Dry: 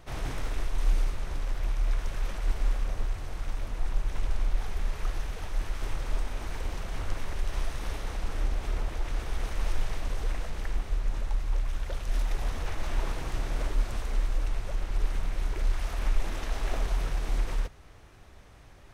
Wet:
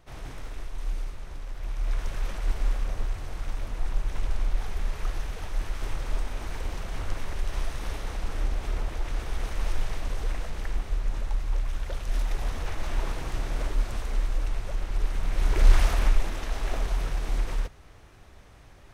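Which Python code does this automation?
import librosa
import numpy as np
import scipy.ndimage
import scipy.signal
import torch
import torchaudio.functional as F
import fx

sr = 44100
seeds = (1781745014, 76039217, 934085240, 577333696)

y = fx.gain(x, sr, db=fx.line((1.52, -6.0), (2.0, 1.0), (15.16, 1.0), (15.75, 11.5), (16.33, 1.0)))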